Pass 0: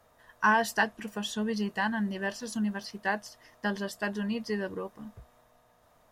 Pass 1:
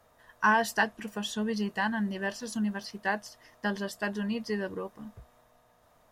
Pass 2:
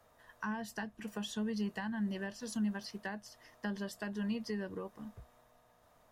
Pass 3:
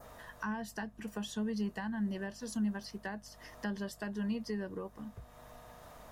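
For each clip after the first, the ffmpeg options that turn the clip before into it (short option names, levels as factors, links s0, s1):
-af anull
-filter_complex "[0:a]acrossover=split=240[s0][s1];[s1]acompressor=threshold=0.0158:ratio=10[s2];[s0][s2]amix=inputs=2:normalize=0,volume=0.708"
-af "acompressor=mode=upward:threshold=0.00794:ratio=2.5,adynamicequalizer=threshold=0.00126:dfrequency=2900:dqfactor=0.86:tfrequency=2900:tqfactor=0.86:attack=5:release=100:ratio=0.375:range=2:mode=cutabove:tftype=bell,aeval=exprs='val(0)+0.000891*(sin(2*PI*50*n/s)+sin(2*PI*2*50*n/s)/2+sin(2*PI*3*50*n/s)/3+sin(2*PI*4*50*n/s)/4+sin(2*PI*5*50*n/s)/5)':c=same,volume=1.12"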